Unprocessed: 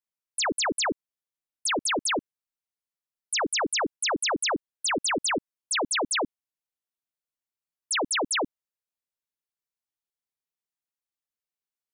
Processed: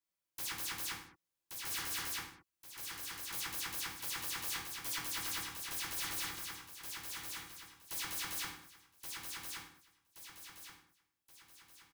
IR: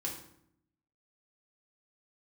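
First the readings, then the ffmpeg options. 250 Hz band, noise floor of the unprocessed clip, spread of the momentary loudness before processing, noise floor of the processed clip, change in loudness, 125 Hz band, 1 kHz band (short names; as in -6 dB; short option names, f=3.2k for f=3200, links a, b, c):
-21.5 dB, under -85 dBFS, 6 LU, under -85 dBFS, -13.0 dB, -5.5 dB, -17.0 dB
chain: -filter_complex "[0:a]aeval=exprs='0.0168*(abs(mod(val(0)/0.0168+3,4)-2)-1)':c=same,aecho=1:1:1125|2250|3375|4500|5625:0.596|0.244|0.1|0.0411|0.0168[a];[1:a]atrim=start_sample=2205,afade=t=out:st=0.28:d=0.01,atrim=end_sample=12789[b];[a][b]afir=irnorm=-1:irlink=0,volume=1dB"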